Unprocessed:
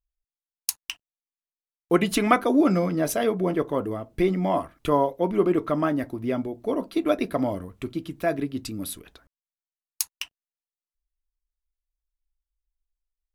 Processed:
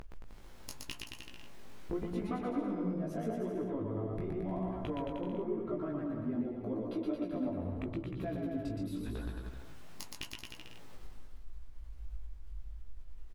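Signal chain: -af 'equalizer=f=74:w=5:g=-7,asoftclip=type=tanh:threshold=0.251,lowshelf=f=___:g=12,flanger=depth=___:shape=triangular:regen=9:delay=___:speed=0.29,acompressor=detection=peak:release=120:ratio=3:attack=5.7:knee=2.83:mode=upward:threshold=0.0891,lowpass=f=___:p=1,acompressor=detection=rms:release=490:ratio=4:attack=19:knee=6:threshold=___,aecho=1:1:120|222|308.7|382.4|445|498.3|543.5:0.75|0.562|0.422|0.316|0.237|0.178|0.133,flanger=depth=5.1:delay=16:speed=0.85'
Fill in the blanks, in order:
370, 9.9, 8.6, 1500, 0.0158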